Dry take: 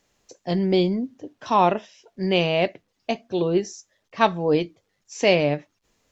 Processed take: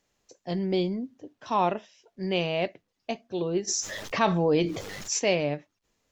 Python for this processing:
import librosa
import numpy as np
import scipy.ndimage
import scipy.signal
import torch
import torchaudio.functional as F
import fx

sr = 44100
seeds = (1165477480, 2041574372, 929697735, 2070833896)

y = fx.env_flatten(x, sr, amount_pct=70, at=(3.67, 5.18), fade=0.02)
y = y * 10.0 ** (-6.5 / 20.0)